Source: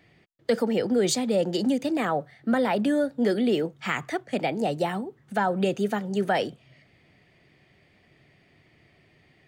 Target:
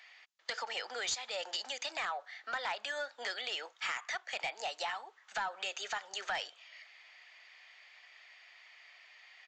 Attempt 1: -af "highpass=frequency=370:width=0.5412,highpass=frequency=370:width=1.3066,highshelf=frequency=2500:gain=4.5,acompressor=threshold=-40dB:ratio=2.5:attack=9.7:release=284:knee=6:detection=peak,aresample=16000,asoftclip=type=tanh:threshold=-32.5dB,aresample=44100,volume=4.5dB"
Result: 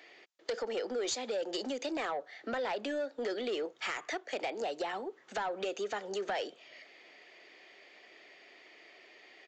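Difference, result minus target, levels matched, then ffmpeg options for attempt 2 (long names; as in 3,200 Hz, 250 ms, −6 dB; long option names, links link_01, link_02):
500 Hz band +9.0 dB
-af "highpass=frequency=880:width=0.5412,highpass=frequency=880:width=1.3066,highshelf=frequency=2500:gain=4.5,acompressor=threshold=-40dB:ratio=2.5:attack=9.7:release=284:knee=6:detection=peak,aresample=16000,asoftclip=type=tanh:threshold=-32.5dB,aresample=44100,volume=4.5dB"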